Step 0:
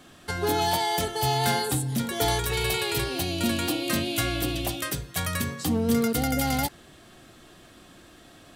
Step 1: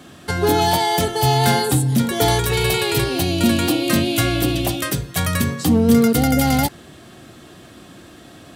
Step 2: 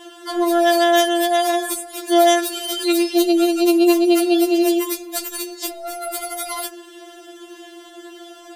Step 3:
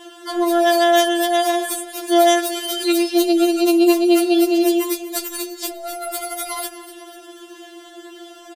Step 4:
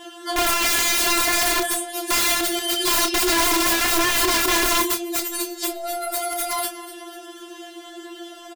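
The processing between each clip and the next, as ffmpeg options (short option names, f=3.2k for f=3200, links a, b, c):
-af "highpass=77,acontrast=60,lowshelf=f=430:g=5.5"
-af "acompressor=threshold=-17dB:ratio=6,afftfilt=real='re*4*eq(mod(b,16),0)':imag='im*4*eq(mod(b,16),0)':win_size=2048:overlap=0.75,volume=3.5dB"
-af "aecho=1:1:247|494|741|988:0.178|0.0836|0.0393|0.0185"
-filter_complex "[0:a]aeval=exprs='(mod(6.68*val(0)+1,2)-1)/6.68':c=same,flanger=delay=1.3:depth=7.5:regen=-85:speed=0.26:shape=triangular,asplit=2[a][b];[b]adelay=30,volume=-8.5dB[c];[a][c]amix=inputs=2:normalize=0,volume=5.5dB"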